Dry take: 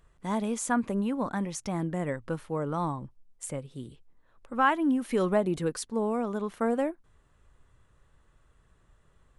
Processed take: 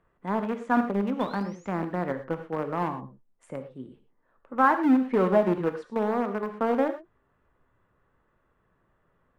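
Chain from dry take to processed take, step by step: painted sound rise, 1.20–1.67 s, 3.4–7.3 kHz -30 dBFS; low-pass that closes with the level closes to 2.3 kHz, closed at -23.5 dBFS; in parallel at -6.5 dB: bit crusher 4-bit; on the sum: three-band isolator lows -12 dB, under 150 Hz, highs -22 dB, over 2.3 kHz; gated-style reverb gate 140 ms flat, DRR 8 dB

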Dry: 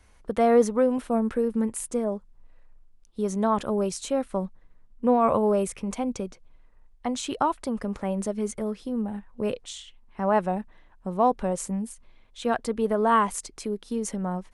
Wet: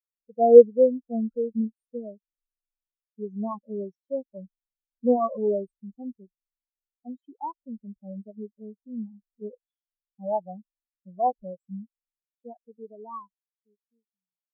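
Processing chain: fade out at the end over 3.00 s; loudest bins only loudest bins 8; in parallel at -4 dB: small samples zeroed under -39.5 dBFS; on the sum: spectral contrast expander 2.5:1; trim +4 dB

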